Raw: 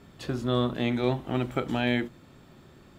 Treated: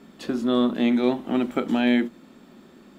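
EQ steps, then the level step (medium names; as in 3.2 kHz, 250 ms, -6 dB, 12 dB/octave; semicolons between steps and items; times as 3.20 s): resonant low shelf 160 Hz -10 dB, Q 3; +2.0 dB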